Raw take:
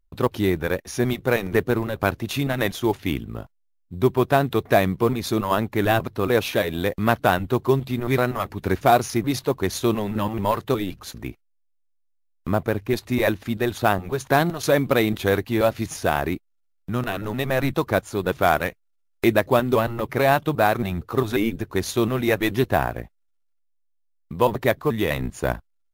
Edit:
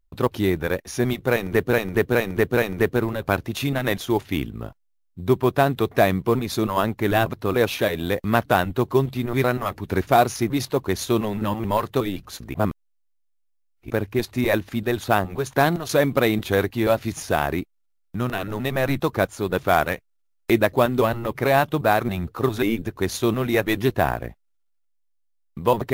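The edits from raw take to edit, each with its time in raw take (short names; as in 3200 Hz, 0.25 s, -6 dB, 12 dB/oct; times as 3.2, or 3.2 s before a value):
1.31–1.73 loop, 4 plays
11.28–12.64 reverse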